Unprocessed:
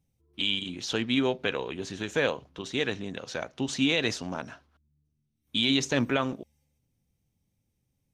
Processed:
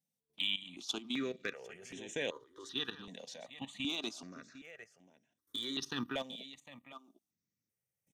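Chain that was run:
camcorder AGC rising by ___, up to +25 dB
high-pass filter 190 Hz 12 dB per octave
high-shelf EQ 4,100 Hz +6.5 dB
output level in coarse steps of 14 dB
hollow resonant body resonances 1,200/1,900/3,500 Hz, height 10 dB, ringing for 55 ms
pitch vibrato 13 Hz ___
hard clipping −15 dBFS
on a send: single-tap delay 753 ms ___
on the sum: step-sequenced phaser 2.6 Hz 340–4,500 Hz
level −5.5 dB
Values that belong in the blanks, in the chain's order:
5.1 dB per second, 7.4 cents, −15 dB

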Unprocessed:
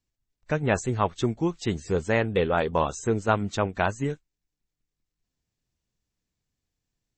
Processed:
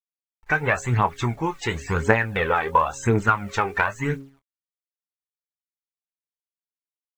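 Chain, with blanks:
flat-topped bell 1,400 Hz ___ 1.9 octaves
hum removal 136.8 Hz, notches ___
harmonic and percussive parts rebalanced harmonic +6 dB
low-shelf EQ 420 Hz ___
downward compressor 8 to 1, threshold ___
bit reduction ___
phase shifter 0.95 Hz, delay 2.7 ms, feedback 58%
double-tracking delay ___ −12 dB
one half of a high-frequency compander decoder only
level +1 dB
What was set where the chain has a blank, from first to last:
+11 dB, 4, −3.5 dB, −20 dBFS, 10 bits, 25 ms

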